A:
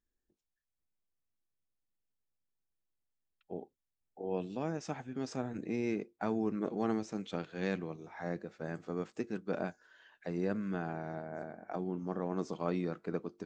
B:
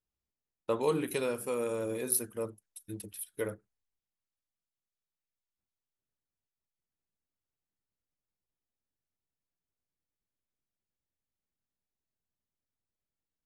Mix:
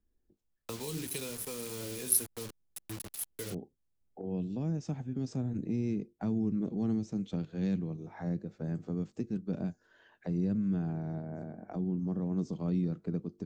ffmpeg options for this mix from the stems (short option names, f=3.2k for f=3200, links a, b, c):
-filter_complex "[0:a]tiltshelf=f=770:g=8.5,volume=3dB[a];[1:a]bandreject=f=570:w=12,acrossover=split=370|3000[b][c][d];[c]acompressor=threshold=-35dB:ratio=6[e];[b][e][d]amix=inputs=3:normalize=0,acrusher=bits=6:mix=0:aa=0.000001,volume=0.5dB[f];[a][f]amix=inputs=2:normalize=0,highshelf=f=8.1k:g=-10,acrossover=split=210|3000[g][h][i];[h]acompressor=threshold=-45dB:ratio=3[j];[g][j][i]amix=inputs=3:normalize=0,crystalizer=i=1.5:c=0"